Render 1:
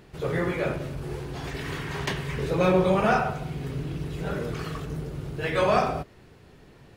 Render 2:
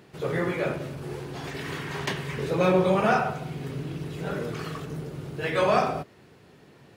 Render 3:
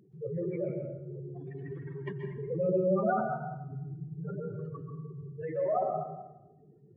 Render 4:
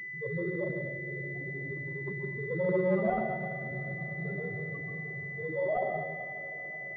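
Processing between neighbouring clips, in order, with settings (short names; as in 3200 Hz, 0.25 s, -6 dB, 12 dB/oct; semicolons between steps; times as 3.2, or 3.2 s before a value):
HPF 120 Hz 12 dB/oct
spectral contrast raised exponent 3.8; plate-style reverb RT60 0.88 s, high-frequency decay 0.65×, pre-delay 0.115 s, DRR 3.5 dB; gain -7 dB
diffused feedback echo 0.475 s, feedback 62%, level -14 dB; pulse-width modulation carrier 2000 Hz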